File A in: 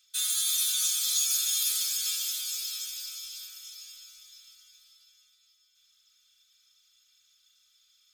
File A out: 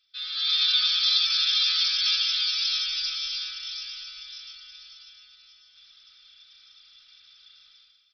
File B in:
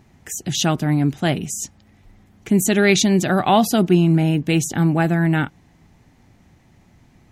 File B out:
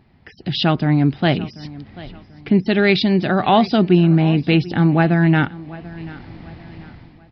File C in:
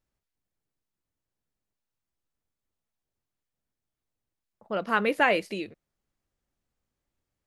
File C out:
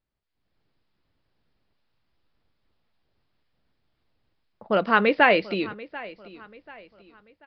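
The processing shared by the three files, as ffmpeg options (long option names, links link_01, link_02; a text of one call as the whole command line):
ffmpeg -i in.wav -filter_complex "[0:a]dynaudnorm=framelen=120:gausssize=7:maxgain=16.5dB,asplit=2[link_01][link_02];[link_02]aecho=0:1:738|1476|2214:0.112|0.0415|0.0154[link_03];[link_01][link_03]amix=inputs=2:normalize=0,aresample=11025,aresample=44100,volume=-2dB" out.wav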